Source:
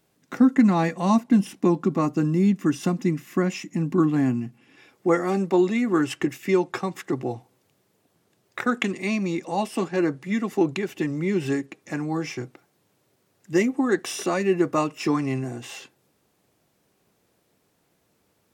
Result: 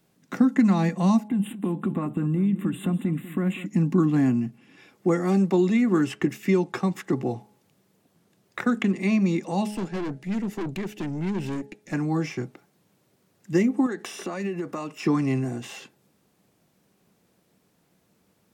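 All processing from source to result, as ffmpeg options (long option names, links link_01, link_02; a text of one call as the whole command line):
ffmpeg -i in.wav -filter_complex "[0:a]asettb=1/sr,asplit=3[link_01][link_02][link_03];[link_01]atrim=end=1.284[link_04];[link_02]atrim=start=1.28:end=3.66,asetpts=PTS-STARTPTS,afade=type=in:duration=0.004:curve=qsin,afade=type=out:start_time=2.376:duration=0.004:curve=qsin,acompressor=threshold=-24dB:ratio=12:attack=3.2:release=140:knee=1:detection=peak,asuperstop=centerf=5400:order=12:qfactor=1.5,aecho=1:1:194|388|582:0.188|0.0622|0.0205,atrim=end_sample=104958[link_05];[link_03]atrim=start=3.656[link_06];[link_04][link_05]acrossfade=duration=0.004:curve1=hsin:curve2=qsin[link_07];[link_07][link_06]acrossfade=duration=0.004:curve1=qsin:curve2=hsin,asettb=1/sr,asplit=3[link_08][link_09][link_10];[link_08]atrim=end=9.714[link_11];[link_09]atrim=start=9.71:end=11.93,asetpts=PTS-STARTPTS,afade=type=in:duration=0.004:curve=qsin,afade=type=out:start_time=2.216:duration=0.004:curve=qsin,equalizer=frequency=1100:width=4.4:gain=-10,aeval=exprs='(tanh(28.2*val(0)+0.55)-tanh(0.55))/28.2':channel_layout=same[link_12];[link_10]atrim=start=11.926[link_13];[link_11][link_12]acrossfade=duration=0.004:curve1=hsin:curve2=qsin[link_14];[link_14][link_13]acrossfade=duration=0.004:curve1=qsin:curve2=hsin,asettb=1/sr,asplit=3[link_15][link_16][link_17];[link_15]atrim=end=13.864[link_18];[link_16]atrim=start=13.86:end=15.03,asetpts=PTS-STARTPTS,afade=type=in:duration=0.004:curve=qsin,afade=type=out:start_time=1.166:duration=0.004:curve=qsin,lowshelf=frequency=200:gain=-8.5,acompressor=threshold=-28dB:ratio=6:attack=3.2:release=140:knee=1:detection=peak[link_19];[link_17]atrim=start=15.026[link_20];[link_18][link_19]acrossfade=duration=0.004:curve1=hsin:curve2=qsin[link_21];[link_21][link_20]acrossfade=duration=0.004:curve1=qsin:curve2=hsin,equalizer=frequency=190:width_type=o:width=0.69:gain=7.5,bandreject=frequency=210.2:width_type=h:width=4,bandreject=frequency=420.4:width_type=h:width=4,bandreject=frequency=630.6:width_type=h:width=4,bandreject=frequency=840.8:width_type=h:width=4,acrossover=split=410|2600[link_22][link_23][link_24];[link_22]acompressor=threshold=-18dB:ratio=4[link_25];[link_23]acompressor=threshold=-28dB:ratio=4[link_26];[link_24]acompressor=threshold=-41dB:ratio=4[link_27];[link_25][link_26][link_27]amix=inputs=3:normalize=0" out.wav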